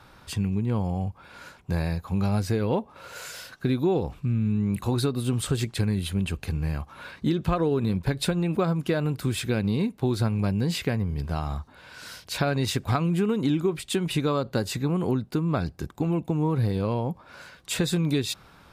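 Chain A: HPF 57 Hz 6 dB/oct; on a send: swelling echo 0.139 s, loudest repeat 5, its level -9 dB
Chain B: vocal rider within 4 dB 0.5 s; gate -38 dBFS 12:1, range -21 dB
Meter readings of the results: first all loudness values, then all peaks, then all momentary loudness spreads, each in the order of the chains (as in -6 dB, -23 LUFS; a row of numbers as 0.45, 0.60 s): -24.5, -27.0 LUFS; -9.0, -12.0 dBFS; 5, 7 LU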